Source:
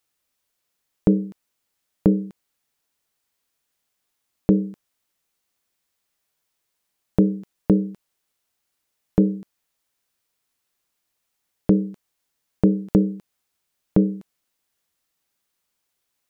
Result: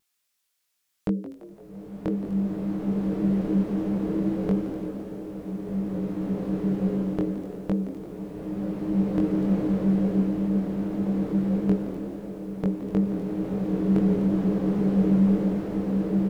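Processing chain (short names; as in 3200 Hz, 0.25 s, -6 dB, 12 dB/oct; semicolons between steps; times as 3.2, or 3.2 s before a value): tilt shelf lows -6.5 dB, about 880 Hz; vibrato 1.1 Hz 18 cents; chorus 2.7 Hz, delay 20 ms, depth 2.9 ms; on a send: frequency-shifting echo 0.17 s, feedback 51%, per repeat +76 Hz, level -14 dB; on the sum: bloom reverb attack 2.38 s, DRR -8.5 dB; gain -1.5 dB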